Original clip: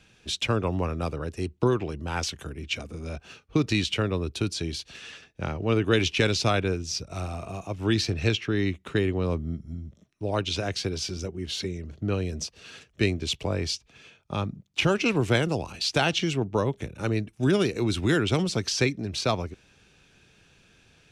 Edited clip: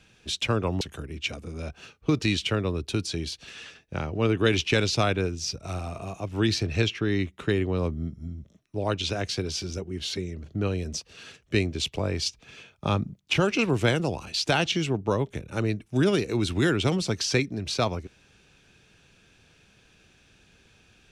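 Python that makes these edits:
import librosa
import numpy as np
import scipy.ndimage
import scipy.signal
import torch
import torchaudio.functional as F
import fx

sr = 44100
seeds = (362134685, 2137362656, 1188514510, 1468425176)

y = fx.edit(x, sr, fx.cut(start_s=0.81, length_s=1.47),
    fx.clip_gain(start_s=13.73, length_s=0.93, db=4.0), tone=tone)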